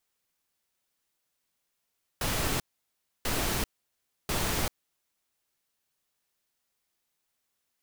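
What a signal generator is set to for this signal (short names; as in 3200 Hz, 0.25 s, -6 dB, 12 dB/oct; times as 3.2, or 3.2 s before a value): noise bursts pink, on 0.39 s, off 0.65 s, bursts 3, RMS -29 dBFS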